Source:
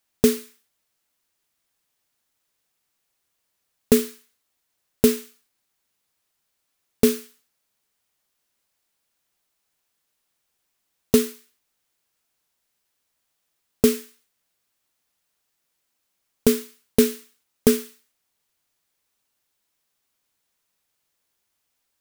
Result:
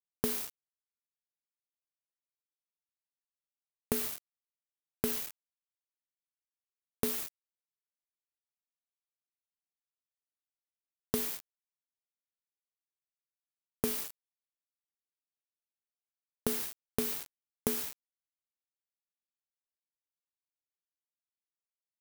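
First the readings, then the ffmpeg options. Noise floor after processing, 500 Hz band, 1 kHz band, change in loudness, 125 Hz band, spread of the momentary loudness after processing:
below −85 dBFS, −17.5 dB, −6.0 dB, −12.5 dB, −12.5 dB, 10 LU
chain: -filter_complex "[0:a]highpass=frequency=79:poles=1,acompressor=threshold=-25dB:ratio=12,aexciter=amount=9:drive=2.5:freq=10000,acrossover=split=9700[link_01][link_02];[link_02]acompressor=threshold=-27dB:ratio=4:attack=1:release=60[link_03];[link_01][link_03]amix=inputs=2:normalize=0,acrusher=bits=4:mix=0:aa=0.000001,volume=-5dB"

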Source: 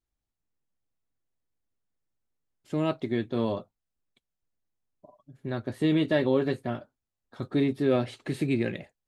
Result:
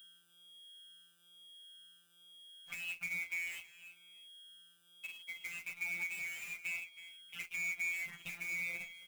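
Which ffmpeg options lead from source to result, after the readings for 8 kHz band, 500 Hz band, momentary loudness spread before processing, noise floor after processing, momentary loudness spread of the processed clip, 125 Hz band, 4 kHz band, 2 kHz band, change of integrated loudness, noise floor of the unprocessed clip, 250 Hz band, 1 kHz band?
can't be measured, −38.5 dB, 12 LU, −68 dBFS, 19 LU, −31.5 dB, −6.0 dB, +3.0 dB, −11.0 dB, below −85 dBFS, below −35 dB, −22.5 dB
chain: -filter_complex "[0:a]afftfilt=real='real(if(lt(b,920),b+92*(1-2*mod(floor(b/92),2)),b),0)':imag='imag(if(lt(b,920),b+92*(1-2*mod(floor(b/92),2)),b),0)':win_size=2048:overlap=0.75,agate=range=-40dB:threshold=-59dB:ratio=16:detection=peak,aeval=exprs='val(0)+0.00158*sin(2*PI*3300*n/s)':channel_layout=same,equalizer=frequency=190:width=1.6:gain=11,alimiter=limit=-21.5dB:level=0:latency=1:release=17,highshelf=frequency=3800:width_type=q:width=3:gain=-11,afftfilt=real='hypot(re,im)*cos(PI*b)':imag='0':win_size=1024:overlap=0.75,aresample=16000,asoftclip=type=tanh:threshold=-23.5dB,aresample=44100,acrusher=bits=2:mode=log:mix=0:aa=0.000001,acompressor=threshold=-43dB:ratio=4,asplit=2[link_01][link_02];[link_02]aecho=0:1:321|642:0.178|0.0338[link_03];[link_01][link_03]amix=inputs=2:normalize=0,asplit=2[link_04][link_05];[link_05]adelay=10.6,afreqshift=1.1[link_06];[link_04][link_06]amix=inputs=2:normalize=1,volume=5.5dB"

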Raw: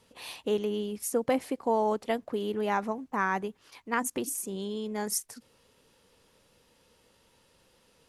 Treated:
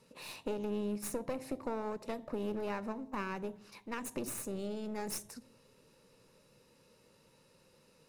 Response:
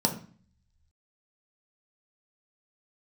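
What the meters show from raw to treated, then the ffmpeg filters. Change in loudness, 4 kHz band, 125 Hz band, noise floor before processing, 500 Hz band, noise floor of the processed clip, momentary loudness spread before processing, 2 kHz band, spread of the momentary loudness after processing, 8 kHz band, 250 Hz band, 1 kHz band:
−8.5 dB, −8.5 dB, −4.0 dB, −66 dBFS, −8.5 dB, −67 dBFS, 9 LU, −11.0 dB, 7 LU, −9.0 dB, −5.5 dB, −12.0 dB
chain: -filter_complex "[0:a]acompressor=threshold=-30dB:ratio=12,aeval=exprs='clip(val(0),-1,0.00596)':channel_layout=same,asplit=2[link_01][link_02];[1:a]atrim=start_sample=2205,asetrate=29547,aresample=44100[link_03];[link_02][link_03]afir=irnorm=-1:irlink=0,volume=-18.5dB[link_04];[link_01][link_04]amix=inputs=2:normalize=0,volume=-4dB"

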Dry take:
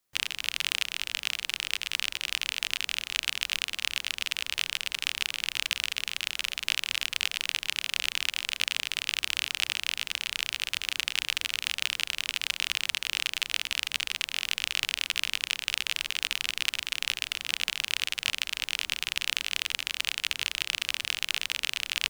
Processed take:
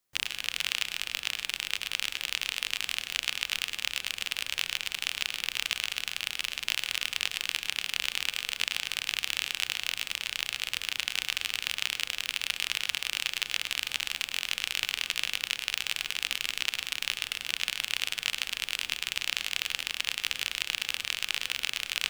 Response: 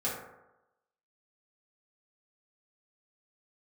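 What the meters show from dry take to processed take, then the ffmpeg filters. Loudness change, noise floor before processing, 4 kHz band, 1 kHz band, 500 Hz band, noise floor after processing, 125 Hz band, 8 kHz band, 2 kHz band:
−1.0 dB, −56 dBFS, −1.0 dB, −0.5 dB, 0.0 dB, −49 dBFS, can't be measured, −1.0 dB, −1.0 dB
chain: -filter_complex "[0:a]acrusher=bits=3:mode=log:mix=0:aa=0.000001,asplit=2[link_01][link_02];[1:a]atrim=start_sample=2205,adelay=100[link_03];[link_02][link_03]afir=irnorm=-1:irlink=0,volume=-16.5dB[link_04];[link_01][link_04]amix=inputs=2:normalize=0,volume=-1.5dB"

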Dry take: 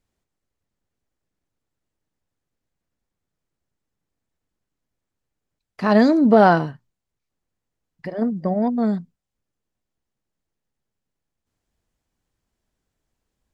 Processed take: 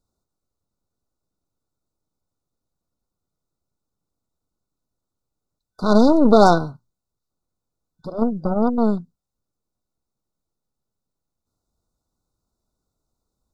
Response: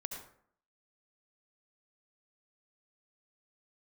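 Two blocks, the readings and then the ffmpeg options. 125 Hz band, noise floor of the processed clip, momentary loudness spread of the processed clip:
0.0 dB, −83 dBFS, 15 LU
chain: -af "aeval=exprs='0.841*(cos(1*acos(clip(val(0)/0.841,-1,1)))-cos(1*PI/2))+0.119*(cos(8*acos(clip(val(0)/0.841,-1,1)))-cos(8*PI/2))':channel_layout=same,afftfilt=real='re*(1-between(b*sr/4096,1500,3500))':imag='im*(1-between(b*sr/4096,1500,3500))':win_size=4096:overlap=0.75"

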